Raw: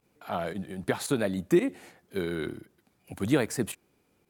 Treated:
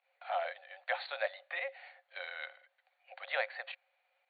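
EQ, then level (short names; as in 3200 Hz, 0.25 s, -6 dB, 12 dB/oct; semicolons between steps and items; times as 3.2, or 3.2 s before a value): rippled Chebyshev high-pass 520 Hz, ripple 9 dB; brick-wall FIR low-pass 4600 Hz; +2.0 dB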